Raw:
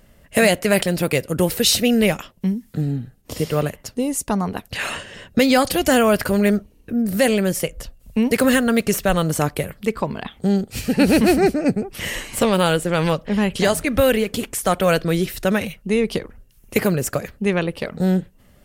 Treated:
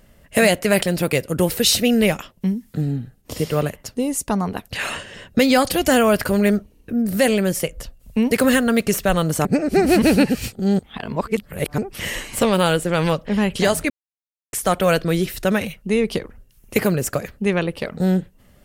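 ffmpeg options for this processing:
-filter_complex "[0:a]asplit=5[a][b][c][d][e];[a]atrim=end=9.452[f];[b]atrim=start=9.448:end=11.782,asetpts=PTS-STARTPTS,areverse[g];[c]atrim=start=11.778:end=13.9,asetpts=PTS-STARTPTS,afade=t=out:st=2.118:d=0.004:c=hsin[h];[d]atrim=start=13.9:end=14.53,asetpts=PTS-STARTPTS,volume=0[i];[e]atrim=start=14.53,asetpts=PTS-STARTPTS,afade=t=in:d=0.004:c=hsin[j];[f][g]acrossfade=d=0.004:c1=hsin:c2=hsin[k];[h][i][j]concat=n=3:v=0:a=1[l];[k][l]acrossfade=d=0.004:c1=hsin:c2=hsin"

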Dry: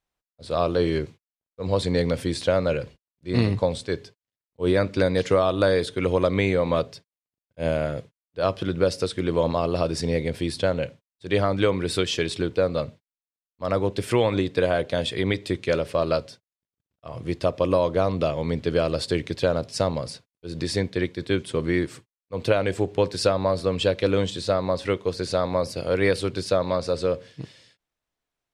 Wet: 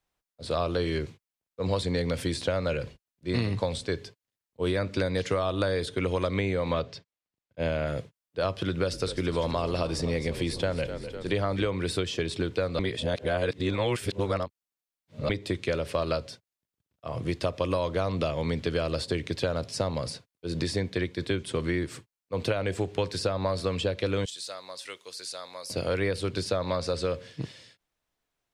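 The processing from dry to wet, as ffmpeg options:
-filter_complex "[0:a]asettb=1/sr,asplit=3[a][b][c];[a]atrim=end=6.734[d];[b]atrim=start=6.73:end=7.87,asetpts=PTS-STARTPTS,afade=t=in:d=0.004:c=qsin,afade=t=out:st=1.136:d=0.004:c=qsin,lowpass=5.3k[e];[c]atrim=start=7.866[f];[d][e]acrossfade=d=0.004:c1=hsin:c2=qsin[g];[g][f]acrossfade=d=0.004:c1=qsin:c2=hsin,asettb=1/sr,asplit=3[h][i][j];[h]atrim=end=8.644[k];[i]atrim=start=8.64:end=11.68,asetpts=PTS-STARTPTS,afade=t=in:d=0.004:c=qsin,afade=t=out:st=3.036:d=0.004:c=qsin,asplit=7[l][m][n][o][p][q][r];[m]adelay=251,afreqshift=-40,volume=-15dB[s];[n]adelay=502,afreqshift=-80,volume=-19.7dB[t];[o]adelay=753,afreqshift=-120,volume=-24.5dB[u];[p]adelay=1004,afreqshift=-160,volume=-29.2dB[v];[q]adelay=1255,afreqshift=-200,volume=-33.9dB[w];[r]adelay=1506,afreqshift=-240,volume=-38.7dB[x];[l][s][t][u][v][w][x]amix=inputs=7:normalize=0,atrim=end_sample=134064[y];[j]atrim=start=11.676[z];[k][y]acrossfade=d=0.004:c1=hsin:c2=qsin[aa];[aa][z]acrossfade=d=0.004:c1=qsin:c2=hsin,asettb=1/sr,asplit=3[ab][ac][ad];[ab]atrim=end=24.254[ae];[ac]atrim=start=24.25:end=25.7,asetpts=PTS-STARTPTS,afade=t=in:d=0.004:c=qsin,afade=t=out:st=1.446:d=0.004:c=qsin,aderivative[af];[ad]atrim=start=25.696[ag];[ae][af]acrossfade=d=0.004:c1=hsin:c2=qsin[ah];[ah][ag]acrossfade=d=0.004:c1=qsin:c2=hsin,asplit=3[ai][aj][ak];[ai]atrim=end=12.792[al];[aj]atrim=start=12.788:end=15.292,asetpts=PTS-STARTPTS,areverse[am];[ak]atrim=start=15.288[an];[al][am]acrossfade=d=0.004:c1=hsin:c2=hsin[ao];[ao][an]acrossfade=d=0.004:c1=hsin:c2=hsin,acrossover=split=97|1200[ap][aq][ar];[ap]acompressor=threshold=-38dB:ratio=4[as];[aq]acompressor=threshold=-30dB:ratio=4[at];[ar]acompressor=threshold=-37dB:ratio=4[au];[as][at][au]amix=inputs=3:normalize=0,volume=2.5dB"

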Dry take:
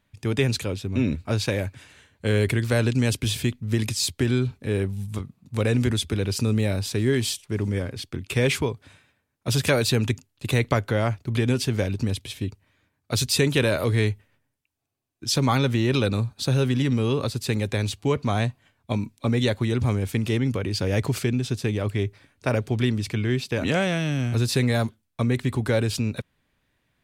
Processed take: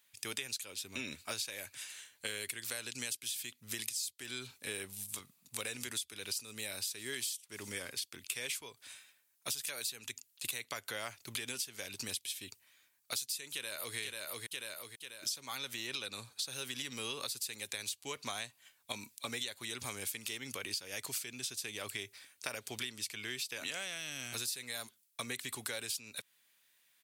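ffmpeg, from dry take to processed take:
-filter_complex "[0:a]asplit=2[a][b];[b]afade=t=in:st=13.53:d=0.01,afade=t=out:st=13.97:d=0.01,aecho=0:1:490|980|1470|1960|2450:0.421697|0.168679|0.0674714|0.0269886|0.0107954[c];[a][c]amix=inputs=2:normalize=0,asettb=1/sr,asplit=3[d][e][f];[d]atrim=end=15.874[g];[e]atrim=start=15.87:end=16.49,asetpts=PTS-STARTPTS,afade=t=in:d=0.004:c=qsin,afade=t=out:st=0.616:d=0.004:c=qsin,highshelf=f=11k:g=-8.5[h];[f]atrim=start=16.486[i];[g][h]acrossfade=d=0.004:c1=hsin:c2=qsin[j];[j][i]acrossfade=d=0.004:c1=qsin:c2=hsin,aderivative,acompressor=threshold=-46dB:ratio=12,volume=10dB"

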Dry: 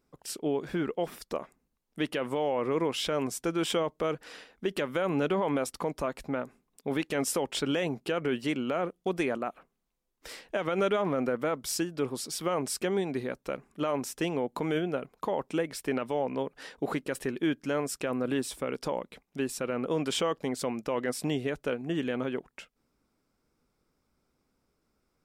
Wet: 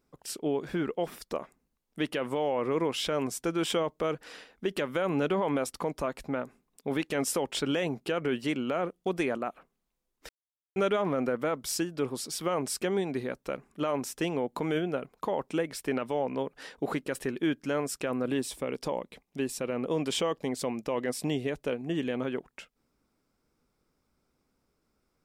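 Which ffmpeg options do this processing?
-filter_complex "[0:a]asettb=1/sr,asplit=3[a][b][c];[a]atrim=end=18.264[d];[b]atrim=start=18.26:end=22.22,asetpts=PTS-STARTPTS,afade=t=in:d=0.004:c=qsin,afade=t=out:st=3.956:d=0.004:c=qsin,equalizer=f=1.4k:t=o:w=0.39:g=-6[e];[c]atrim=start=22.216[f];[d][e]acrossfade=d=0.004:c1=hsin:c2=qsin[g];[g][f]acrossfade=d=0.004:c1=qsin:c2=hsin,asplit=3[h][i][j];[h]atrim=end=10.29,asetpts=PTS-STARTPTS,afade=t=out:st=10.286:d=0.004:c=hsin[k];[i]atrim=start=10.29:end=10.76,asetpts=PTS-STARTPTS,volume=0[l];[j]atrim=start=10.76,asetpts=PTS-STARTPTS,afade=t=in:d=0.004:c=hsin[m];[k][l][m]concat=n=3:v=0:a=1"

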